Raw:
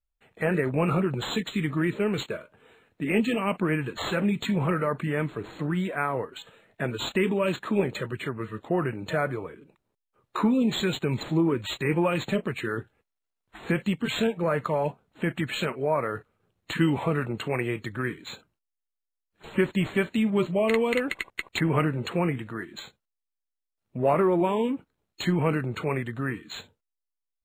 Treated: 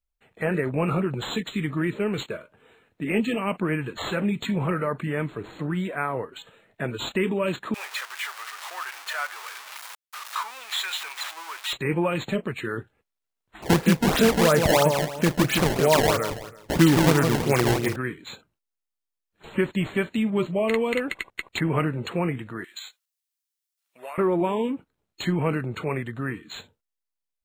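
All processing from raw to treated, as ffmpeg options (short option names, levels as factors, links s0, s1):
-filter_complex "[0:a]asettb=1/sr,asplit=3[s0][s1][s2];[s0]atrim=end=7.744[s3];[s1]atrim=start=7.74:end=11.73,asetpts=PTS-STARTPTS,afade=t=in:d=0.004:c=qsin,afade=t=out:st=3.986:d=0.004:c=qsin,aeval=exprs='val(0)+0.5*0.0398*sgn(val(0))':c=same,highpass=f=950:w=0.5412,highpass=f=950:w=1.3066,acrusher=bits=8:mode=log:mix=0:aa=0.000001[s4];[s2]atrim=start=11.726[s5];[s3][s4]acrossfade=d=0.004:c1=hsin:c2=qsin[s6];[s6][s5]acrossfade=d=0.004:c1=qsin:c2=hsin,asettb=1/sr,asplit=3[s7][s8][s9];[s7]atrim=end=13.624[s10];[s8]atrim=start=13.62:end=17.96,asetpts=PTS-STARTPTS,afade=t=in:d=0.004:c=qsin,afade=t=out:st=4.336:d=0.004:c=qsin,aecho=1:1:165|330|495|660:0.562|0.169|0.0506|0.0152,atrim=end_sample=191394,acrusher=samples=21:mix=1:aa=0.000001:lfo=1:lforange=33.6:lforate=3,acontrast=62[s11];[s9]atrim=start=17.956[s12];[s10][s11]acrossfade=d=0.004:c1=hsin:c2=qsin[s13];[s13][s12]acrossfade=d=0.004:c1=qsin:c2=hsin,asettb=1/sr,asplit=3[s14][s15][s16];[s14]atrim=end=22.644[s17];[s15]atrim=start=22.64:end=24.18,asetpts=PTS-STARTPTS,afade=t=in:d=0.004:c=qsin,afade=t=out:st=1.536:d=0.004:c=qsin,highpass=1100,highshelf=f=2500:g=12,acompressor=threshold=0.02:ratio=4:attack=3.2:release=140:knee=1:detection=peak[s18];[s16]atrim=start=24.176[s19];[s17][s18]acrossfade=d=0.004:c1=hsin:c2=qsin[s20];[s20][s19]acrossfade=d=0.004:c1=qsin:c2=hsin"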